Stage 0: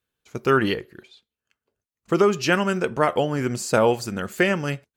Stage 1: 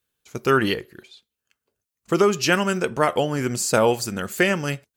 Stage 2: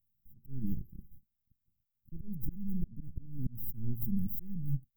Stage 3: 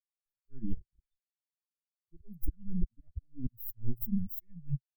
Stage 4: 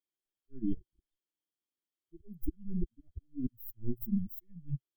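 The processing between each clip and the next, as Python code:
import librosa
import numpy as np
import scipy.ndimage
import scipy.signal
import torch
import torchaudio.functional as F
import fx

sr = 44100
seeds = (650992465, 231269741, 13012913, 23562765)

y1 = fx.high_shelf(x, sr, hz=4500.0, db=8.5)
y2 = np.maximum(y1, 0.0)
y2 = fx.auto_swell(y2, sr, attack_ms=423.0)
y2 = scipy.signal.sosfilt(scipy.signal.cheby2(4, 50, [500.0, 8800.0], 'bandstop', fs=sr, output='sos'), y2)
y2 = F.gain(torch.from_numpy(y2), 7.0).numpy()
y3 = fx.bin_expand(y2, sr, power=3.0)
y3 = fx.rider(y3, sr, range_db=10, speed_s=2.0)
y3 = F.gain(torch.from_numpy(y3), 5.5).numpy()
y4 = fx.small_body(y3, sr, hz=(320.0, 3200.0), ring_ms=25, db=16)
y4 = F.gain(torch.from_numpy(y4), -5.0).numpy()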